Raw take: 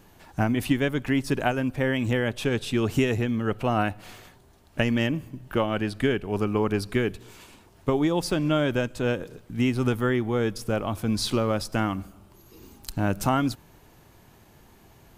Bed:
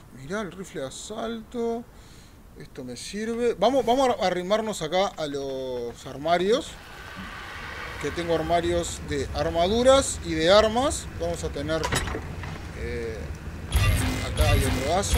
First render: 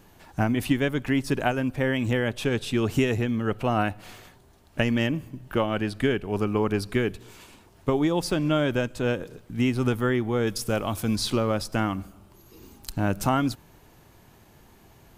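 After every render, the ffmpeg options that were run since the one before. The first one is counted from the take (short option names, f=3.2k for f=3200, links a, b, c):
-filter_complex "[0:a]asettb=1/sr,asplit=3[a][b][c];[a]atrim=end=10.474[d];[b]atrim=start=10.47:end=11.16,asetpts=PTS-STARTPTS,afade=t=in:d=0.004:c=qsin,afade=t=out:st=0.686:d=0.004:c=qsin,highshelf=f=3.2k:g=8.5[e];[c]atrim=start=11.156[f];[d][e]acrossfade=d=0.004:c1=hsin:c2=qsin[g];[g][f]acrossfade=d=0.004:c1=qsin:c2=hsin"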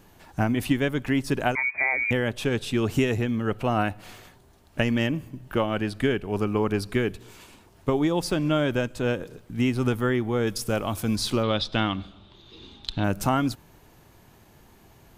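-filter_complex "[0:a]asettb=1/sr,asplit=3[a][b][c];[a]atrim=end=1.554[d];[b]atrim=start=1.55:end=2.11,asetpts=PTS-STARTPTS,afade=t=in:d=0.004:c=qsin,afade=t=out:st=0.556:d=0.004:c=qsin,lowpass=f=2.1k:t=q:w=0.5098,lowpass=f=2.1k:t=q:w=0.6013,lowpass=f=2.1k:t=q:w=0.9,lowpass=f=2.1k:t=q:w=2.563,afreqshift=-2500[e];[c]atrim=start=2.106[f];[d][e]acrossfade=d=0.004:c1=hsin:c2=qsin[g];[g][f]acrossfade=d=0.004:c1=qsin:c2=hsin,asettb=1/sr,asplit=3[h][i][j];[h]atrim=end=11.434[k];[i]atrim=start=11.43:end=13.04,asetpts=PTS-STARTPTS,afade=t=in:d=0.004:c=qsin,afade=t=out:st=1.606:d=0.004:c=qsin,lowpass=f=3.6k:t=q:w=13[l];[j]atrim=start=13.036[m];[k][l]acrossfade=d=0.004:c1=hsin:c2=qsin[n];[n][m]acrossfade=d=0.004:c1=qsin:c2=hsin"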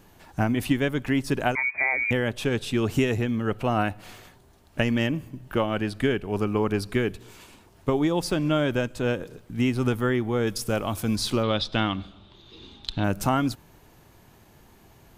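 -af anull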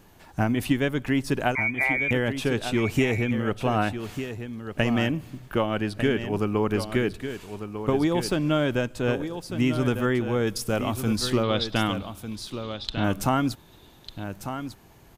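-af "aecho=1:1:1198:0.335"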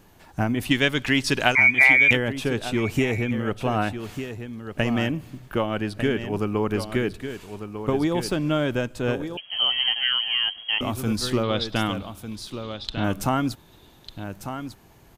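-filter_complex "[0:a]asplit=3[a][b][c];[a]afade=t=out:st=0.7:d=0.02[d];[b]equalizer=f=4k:t=o:w=2.7:g=13.5,afade=t=in:st=0.7:d=0.02,afade=t=out:st=2.15:d=0.02[e];[c]afade=t=in:st=2.15:d=0.02[f];[d][e][f]amix=inputs=3:normalize=0,asettb=1/sr,asplit=3[g][h][i];[g]atrim=end=9.374[j];[h]atrim=start=9.37:end=10.81,asetpts=PTS-STARTPTS,afade=t=in:d=0.004:c=qsin,afade=t=out:st=1.436:d=0.004:c=qsin,lowpass=f=2.8k:t=q:w=0.5098,lowpass=f=2.8k:t=q:w=0.6013,lowpass=f=2.8k:t=q:w=0.9,lowpass=f=2.8k:t=q:w=2.563,afreqshift=-3300[k];[i]atrim=start=10.806[l];[j][k]acrossfade=d=0.004:c1=hsin:c2=qsin[m];[m][l]acrossfade=d=0.004:c1=qsin:c2=hsin"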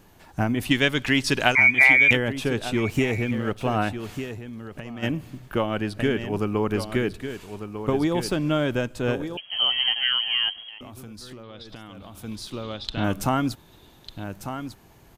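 -filter_complex "[0:a]asettb=1/sr,asplit=3[a][b][c];[a]atrim=end=2.904[d];[b]atrim=start=2.9:end=3.74,asetpts=PTS-STARTPTS,afade=t=in:d=0.004:c=qsin,afade=t=out:st=0.836:d=0.004:c=qsin,aeval=exprs='sgn(val(0))*max(abs(val(0))-0.00355,0)':c=same[e];[c]atrim=start=3.736[f];[d][e]acrossfade=d=0.004:c1=hsin:c2=qsin[g];[g][f]acrossfade=d=0.004:c1=qsin:c2=hsin,asplit=3[h][i][j];[h]afade=t=out:st=4.38:d=0.02[k];[i]acompressor=threshold=-32dB:ratio=12:attack=3.2:release=140:knee=1:detection=peak,afade=t=in:st=4.38:d=0.02,afade=t=out:st=5.02:d=0.02[l];[j]afade=t=in:st=5.02:d=0.02[m];[k][l][m]amix=inputs=3:normalize=0,asettb=1/sr,asplit=3[n][o][p];[n]atrim=end=10.604[q];[o]atrim=start=10.6:end=12.24,asetpts=PTS-STARTPTS,afade=t=in:d=0.004:c=qsin,afade=t=out:st=1.636:d=0.004:c=qsin,acompressor=threshold=-37dB:ratio=16:attack=3.2:release=140:knee=1:detection=peak[r];[p]atrim=start=12.236[s];[q][r]acrossfade=d=0.004:c1=hsin:c2=qsin[t];[t][s]acrossfade=d=0.004:c1=qsin:c2=hsin"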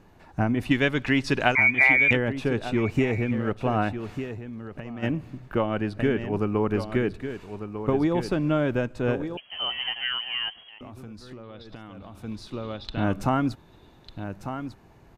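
-af "aemphasis=mode=reproduction:type=75kf,bandreject=f=3.2k:w=13"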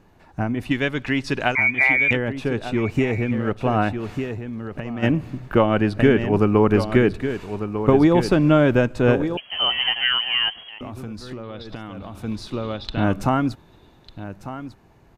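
-af "dynaudnorm=f=230:g=21:m=10dB"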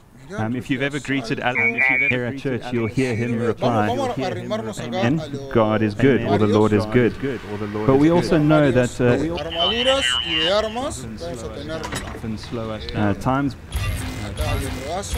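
-filter_complex "[1:a]volume=-2.5dB[a];[0:a][a]amix=inputs=2:normalize=0"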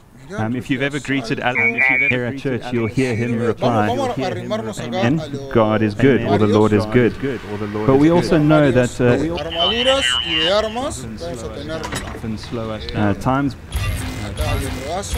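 -af "volume=2.5dB,alimiter=limit=-1dB:level=0:latency=1"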